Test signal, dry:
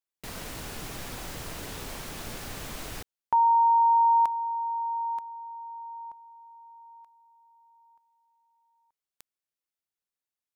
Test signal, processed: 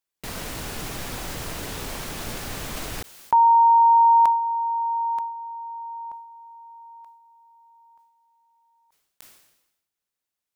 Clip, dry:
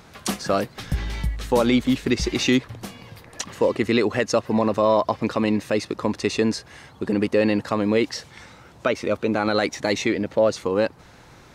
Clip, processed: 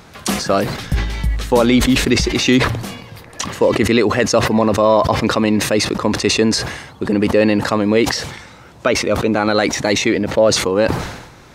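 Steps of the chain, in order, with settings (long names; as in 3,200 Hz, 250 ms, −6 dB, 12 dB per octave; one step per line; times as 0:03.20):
level that may fall only so fast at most 60 dB per second
level +5.5 dB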